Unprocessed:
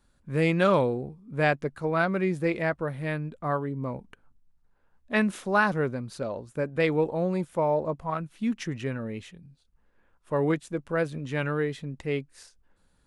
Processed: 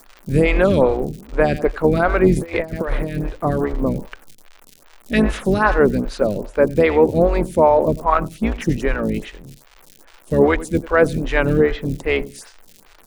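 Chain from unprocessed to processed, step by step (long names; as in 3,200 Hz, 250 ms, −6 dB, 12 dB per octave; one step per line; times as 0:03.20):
sub-octave generator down 2 octaves, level +4 dB
parametric band 73 Hz −12 dB 1.4 octaves
repeating echo 93 ms, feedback 26%, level −19.5 dB
0:02.34–0:03.26: compressor whose output falls as the input rises −33 dBFS, ratio −0.5
0:11.53–0:11.98: low-pass filter 3,700 Hz 12 dB per octave
surface crackle 210 per second −43 dBFS
boost into a limiter +16.5 dB
phaser with staggered stages 2.5 Hz
level −1 dB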